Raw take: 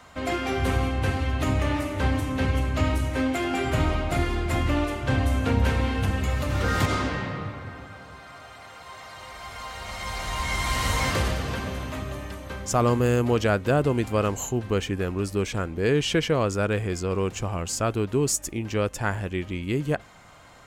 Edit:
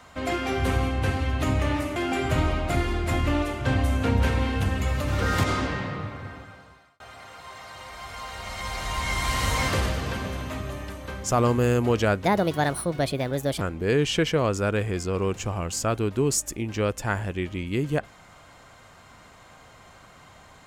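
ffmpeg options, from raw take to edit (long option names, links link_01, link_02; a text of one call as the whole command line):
ffmpeg -i in.wav -filter_complex "[0:a]asplit=5[link_01][link_02][link_03][link_04][link_05];[link_01]atrim=end=1.962[link_06];[link_02]atrim=start=3.378:end=8.42,asetpts=PTS-STARTPTS,afade=type=out:start_time=4.352:duration=0.69[link_07];[link_03]atrim=start=8.42:end=13.674,asetpts=PTS-STARTPTS,afade=type=in:duration=0.004:curve=hsin[link_08];[link_04]atrim=start=13.67:end=15.57,asetpts=PTS-STARTPTS,asetrate=61740,aresample=44100,atrim=end_sample=59850,asetpts=PTS-STARTPTS[link_09];[link_05]atrim=start=15.566[link_10];[link_07][link_08]concat=n=2:v=0:a=1[link_11];[link_06][link_11]acrossfade=duration=0.004:curve1=hsin:curve2=hsin[link_12];[link_12][link_09]acrossfade=duration=0.004:curve1=hsin:curve2=hsin[link_13];[link_13][link_10]acrossfade=duration=0.004:curve1=hsin:curve2=hsin" out.wav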